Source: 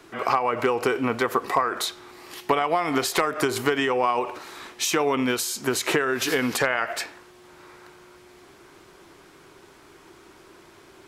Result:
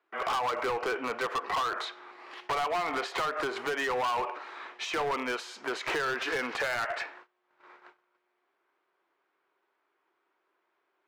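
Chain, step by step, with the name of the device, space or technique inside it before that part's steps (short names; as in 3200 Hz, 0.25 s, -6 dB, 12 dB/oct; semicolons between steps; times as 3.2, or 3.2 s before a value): walkie-talkie (BPF 580–2300 Hz; hard clip -26.5 dBFS, distortion -6 dB; gate -50 dBFS, range -22 dB)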